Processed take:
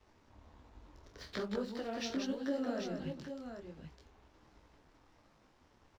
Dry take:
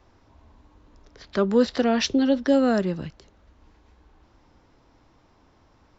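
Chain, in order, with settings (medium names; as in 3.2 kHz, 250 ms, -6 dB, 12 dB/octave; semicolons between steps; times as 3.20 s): compression 3:1, threshold -39 dBFS, peak gain reduction 18 dB; crossover distortion -59 dBFS; multi-tap echo 45/179/786 ms -10.5/-5.5/-7 dB; detune thickener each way 45 cents; trim +1.5 dB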